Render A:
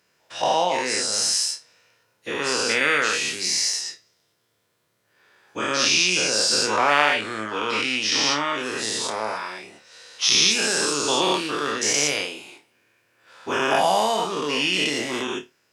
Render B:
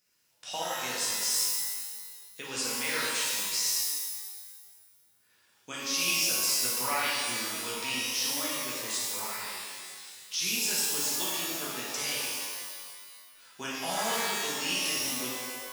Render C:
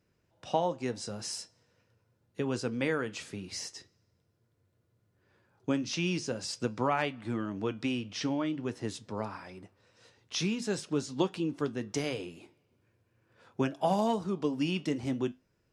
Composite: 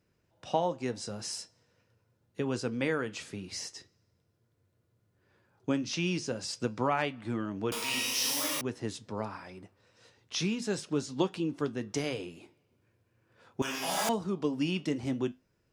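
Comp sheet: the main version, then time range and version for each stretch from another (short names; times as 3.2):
C
7.72–8.61 from B
13.62–14.09 from B
not used: A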